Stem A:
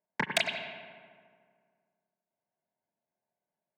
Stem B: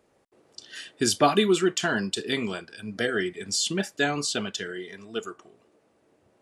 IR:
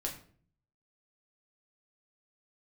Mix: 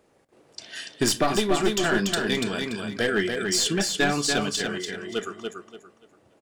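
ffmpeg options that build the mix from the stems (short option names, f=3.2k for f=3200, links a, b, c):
-filter_complex "[0:a]acompressor=threshold=-41dB:ratio=2,volume=-7.5dB[a];[1:a]aeval=exprs='clip(val(0),-1,0.075)':c=same,volume=1.5dB,asplit=4[b][c][d][e];[c]volume=-12dB[f];[d]volume=-3.5dB[g];[e]apad=whole_len=166431[h];[a][h]sidechaingate=range=-33dB:threshold=-50dB:ratio=16:detection=peak[i];[2:a]atrim=start_sample=2205[j];[f][j]afir=irnorm=-1:irlink=0[k];[g]aecho=0:1:288|576|864|1152:1|0.26|0.0676|0.0176[l];[i][b][k][l]amix=inputs=4:normalize=0,alimiter=limit=-9.5dB:level=0:latency=1:release=408"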